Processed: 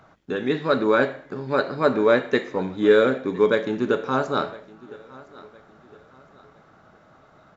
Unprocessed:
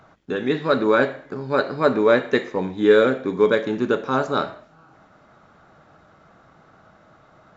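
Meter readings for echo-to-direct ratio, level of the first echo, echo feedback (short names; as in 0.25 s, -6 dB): -21.0 dB, -21.5 dB, 36%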